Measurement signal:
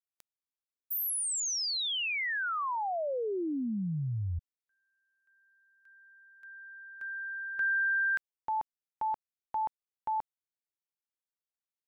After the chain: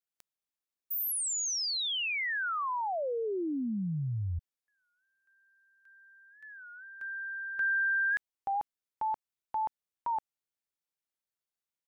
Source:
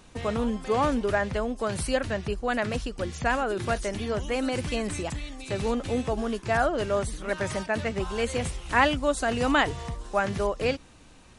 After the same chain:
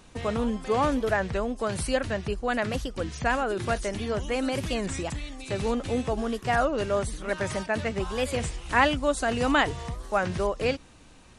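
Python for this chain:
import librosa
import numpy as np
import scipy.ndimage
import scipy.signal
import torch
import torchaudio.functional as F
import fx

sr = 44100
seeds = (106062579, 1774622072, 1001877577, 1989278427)

y = fx.record_warp(x, sr, rpm=33.33, depth_cents=160.0)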